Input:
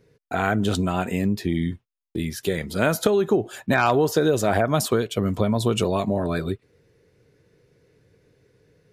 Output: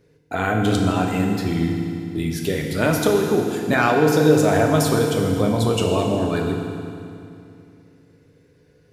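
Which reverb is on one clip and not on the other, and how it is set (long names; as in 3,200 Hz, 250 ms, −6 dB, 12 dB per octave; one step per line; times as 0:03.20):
feedback delay network reverb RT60 2.6 s, low-frequency decay 1.2×, high-frequency decay 0.9×, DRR 0.5 dB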